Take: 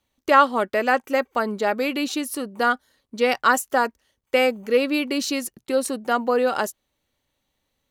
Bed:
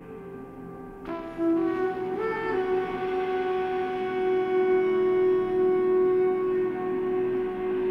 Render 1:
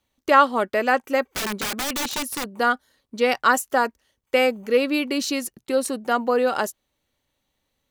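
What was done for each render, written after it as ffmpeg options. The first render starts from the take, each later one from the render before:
ffmpeg -i in.wav -filter_complex "[0:a]asettb=1/sr,asplit=3[link_01][link_02][link_03];[link_01]atrim=end=1.324[link_04];[link_02]atrim=start=1.32:end=2.58,asetpts=PTS-STARTPTS,afade=type=in:duration=0.004:curve=qsin,afade=type=out:start_time=1.256:duration=0.004:curve=qsin,aeval=exprs='(mod(11.9*val(0)+1,2)-1)/11.9':channel_layout=same[link_05];[link_03]atrim=start=2.576[link_06];[link_04][link_05]acrossfade=duration=0.004:curve1=hsin:curve2=qsin[link_07];[link_07][link_06]acrossfade=duration=0.004:curve1=qsin:curve2=hsin" out.wav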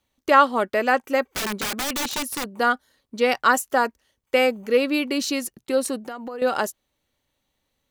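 ffmpeg -i in.wav -filter_complex "[0:a]asettb=1/sr,asplit=3[link_01][link_02][link_03];[link_01]atrim=end=6.014[link_04];[link_02]atrim=start=6.01:end=6.42,asetpts=PTS-STARTPTS,afade=type=in:duration=0.004:curve=qsin,afade=type=out:start_time=0.406:duration=0.004:curve=qsin,acompressor=threshold=-29dB:ratio=16:attack=3.2:release=140:knee=1:detection=peak[link_05];[link_03]atrim=start=6.416[link_06];[link_04][link_05]acrossfade=duration=0.004:curve1=hsin:curve2=qsin[link_07];[link_07][link_06]acrossfade=duration=0.004:curve1=qsin:curve2=hsin" out.wav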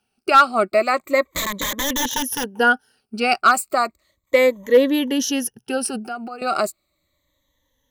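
ffmpeg -i in.wav -af "afftfilt=real='re*pow(10,17/40*sin(2*PI*(1.1*log(max(b,1)*sr/1024/100)/log(2)-(-0.34)*(pts-256)/sr)))':imag='im*pow(10,17/40*sin(2*PI*(1.1*log(max(b,1)*sr/1024/100)/log(2)-(-0.34)*(pts-256)/sr)))':win_size=1024:overlap=0.75,asoftclip=type=hard:threshold=-5.5dB" out.wav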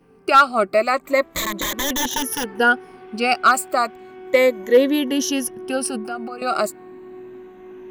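ffmpeg -i in.wav -i bed.wav -filter_complex "[1:a]volume=-12dB[link_01];[0:a][link_01]amix=inputs=2:normalize=0" out.wav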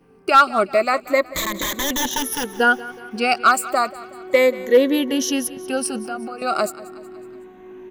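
ffmpeg -i in.wav -af "aecho=1:1:185|370|555|740:0.119|0.0618|0.0321|0.0167" out.wav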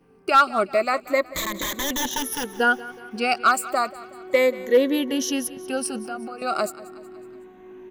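ffmpeg -i in.wav -af "volume=-3.5dB" out.wav

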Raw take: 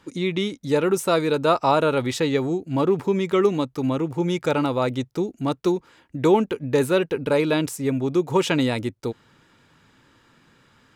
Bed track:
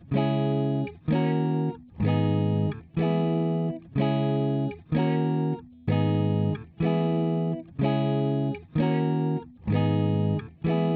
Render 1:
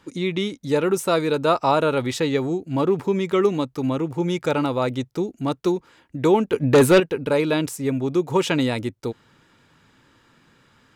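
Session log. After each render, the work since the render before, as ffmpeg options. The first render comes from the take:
ffmpeg -i in.wav -filter_complex "[0:a]asettb=1/sr,asplit=3[link_01][link_02][link_03];[link_01]atrim=end=6.534[link_04];[link_02]atrim=start=6.53:end=7,asetpts=PTS-STARTPTS,afade=type=in:duration=0.004:curve=qsin,afade=type=out:start_time=0.466:duration=0.004:curve=qsin,aeval=exprs='0.376*sin(PI/2*1.78*val(0)/0.376)':channel_layout=same[link_05];[link_03]atrim=start=6.996[link_06];[link_04][link_05]acrossfade=duration=0.004:curve1=hsin:curve2=qsin[link_07];[link_07][link_06]acrossfade=duration=0.004:curve1=qsin:curve2=hsin" out.wav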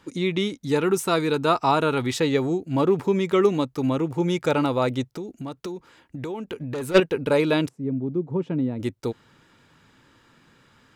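ffmpeg -i in.wav -filter_complex "[0:a]asettb=1/sr,asplit=3[link_01][link_02][link_03];[link_01]atrim=end=0.634[link_04];[link_02]atrim=start=0.63:end=2.14,asetpts=PTS-STARTPTS,afade=type=in:duration=0.004:curve=qsin,afade=type=out:start_time=1.506:duration=0.004:curve=qsin,equalizer=frequency=560:width_type=o:width=0.24:gain=-12[link_05];[link_03]atrim=start=2.136[link_06];[link_04][link_05]acrossfade=duration=0.004:curve1=hsin:curve2=qsin[link_07];[link_07][link_06]acrossfade=duration=0.004:curve1=qsin:curve2=hsin,asplit=3[link_08][link_09][link_10];[link_08]afade=type=out:start_time=5.09:duration=0.02[link_11];[link_09]acompressor=threshold=-30dB:ratio=5:attack=3.2:release=140:knee=1:detection=peak,afade=type=in:start_time=5.09:duration=0.02,afade=type=out:start_time=6.94:duration=0.02[link_12];[link_10]afade=type=in:start_time=6.94:duration=0.02[link_13];[link_11][link_12][link_13]amix=inputs=3:normalize=0,asplit=3[link_14][link_15][link_16];[link_14]afade=type=out:start_time=7.67:duration=0.02[link_17];[link_15]bandpass=frequency=190:width_type=q:width=1.2,afade=type=in:start_time=7.67:duration=0.02,afade=type=out:start_time=8.79:duration=0.02[link_18];[link_16]afade=type=in:start_time=8.79:duration=0.02[link_19];[link_17][link_18][link_19]amix=inputs=3:normalize=0" out.wav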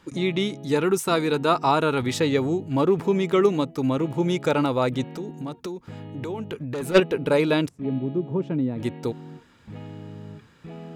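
ffmpeg -i in.wav -i bed.wav -filter_complex "[1:a]volume=-15dB[link_01];[0:a][link_01]amix=inputs=2:normalize=0" out.wav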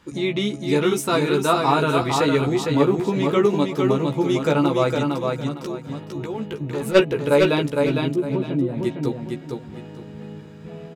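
ffmpeg -i in.wav -filter_complex "[0:a]asplit=2[link_01][link_02];[link_02]adelay=14,volume=-4dB[link_03];[link_01][link_03]amix=inputs=2:normalize=0,asplit=2[link_04][link_05];[link_05]aecho=0:1:457|914|1371|1828:0.631|0.164|0.0427|0.0111[link_06];[link_04][link_06]amix=inputs=2:normalize=0" out.wav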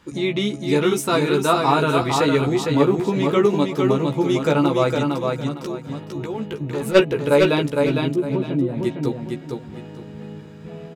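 ffmpeg -i in.wav -af "volume=1dB" out.wav

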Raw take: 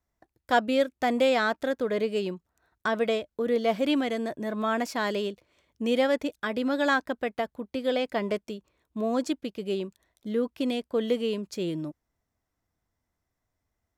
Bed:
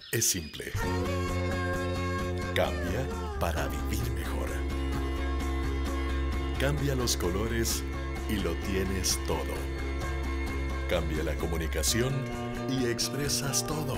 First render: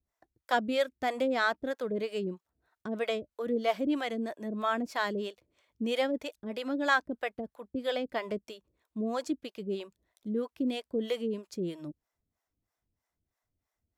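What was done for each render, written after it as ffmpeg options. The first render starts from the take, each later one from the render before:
ffmpeg -i in.wav -filter_complex "[0:a]acrossover=split=470[link_01][link_02];[link_01]aeval=exprs='val(0)*(1-1/2+1/2*cos(2*PI*3.1*n/s))':channel_layout=same[link_03];[link_02]aeval=exprs='val(0)*(1-1/2-1/2*cos(2*PI*3.1*n/s))':channel_layout=same[link_04];[link_03][link_04]amix=inputs=2:normalize=0" out.wav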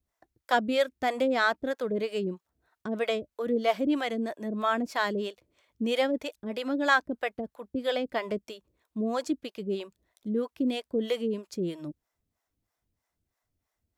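ffmpeg -i in.wav -af "volume=3dB" out.wav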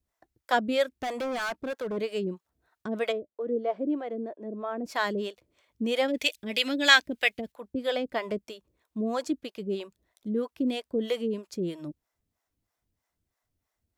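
ffmpeg -i in.wav -filter_complex "[0:a]asplit=3[link_01][link_02][link_03];[link_01]afade=type=out:start_time=0.97:duration=0.02[link_04];[link_02]asoftclip=type=hard:threshold=-28.5dB,afade=type=in:start_time=0.97:duration=0.02,afade=type=out:start_time=1.96:duration=0.02[link_05];[link_03]afade=type=in:start_time=1.96:duration=0.02[link_06];[link_04][link_05][link_06]amix=inputs=3:normalize=0,asplit=3[link_07][link_08][link_09];[link_07]afade=type=out:start_time=3.11:duration=0.02[link_10];[link_08]bandpass=frequency=410:width_type=q:width=1.2,afade=type=in:start_time=3.11:duration=0.02,afade=type=out:start_time=4.84:duration=0.02[link_11];[link_09]afade=type=in:start_time=4.84:duration=0.02[link_12];[link_10][link_11][link_12]amix=inputs=3:normalize=0,asettb=1/sr,asplit=3[link_13][link_14][link_15];[link_13]atrim=end=6.084[link_16];[link_14]atrim=start=6.08:end=7.52,asetpts=PTS-STARTPTS,afade=type=in:duration=0.004:curve=qsin,afade=type=out:start_time=1.436:duration=0.004:curve=qsin,highshelf=frequency=1700:width_type=q:width=1.5:gain=12[link_17];[link_15]atrim=start=7.516[link_18];[link_16][link_17]acrossfade=duration=0.004:curve1=hsin:curve2=qsin[link_19];[link_19][link_18]acrossfade=duration=0.004:curve1=qsin:curve2=hsin" out.wav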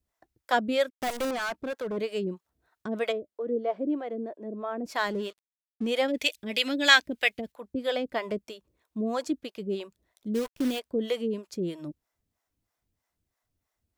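ffmpeg -i in.wav -filter_complex "[0:a]asettb=1/sr,asplit=3[link_01][link_02][link_03];[link_01]atrim=end=0.904[link_04];[link_02]atrim=start=0.9:end=1.31,asetpts=PTS-STARTPTS,afade=type=in:duration=0.004:curve=qsin,afade=type=out:start_time=0.406:duration=0.004:curve=qsin,acrusher=bits=6:dc=4:mix=0:aa=0.000001[link_05];[link_03]atrim=start=1.306[link_06];[link_04][link_05]acrossfade=duration=0.004:curve1=hsin:curve2=qsin[link_07];[link_07][link_06]acrossfade=duration=0.004:curve1=qsin:curve2=hsin,asettb=1/sr,asplit=3[link_08][link_09][link_10];[link_08]atrim=end=4.984[link_11];[link_09]atrim=start=4.98:end=5.9,asetpts=PTS-STARTPTS,afade=type=in:duration=0.004:curve=qsin,afade=type=out:start_time=0.916:duration=0.004:curve=qsin,aeval=exprs='sgn(val(0))*max(abs(val(0))-0.00316,0)':channel_layout=same[link_12];[link_10]atrim=start=5.896[link_13];[link_11][link_12]acrossfade=duration=0.004:curve1=hsin:curve2=qsin[link_14];[link_14][link_13]acrossfade=duration=0.004:curve1=qsin:curve2=hsin,asplit=3[link_15][link_16][link_17];[link_15]afade=type=out:start_time=10.34:duration=0.02[link_18];[link_16]acrusher=bits=7:dc=4:mix=0:aa=0.000001,afade=type=in:start_time=10.34:duration=0.02,afade=type=out:start_time=10.78:duration=0.02[link_19];[link_17]afade=type=in:start_time=10.78:duration=0.02[link_20];[link_18][link_19][link_20]amix=inputs=3:normalize=0" out.wav

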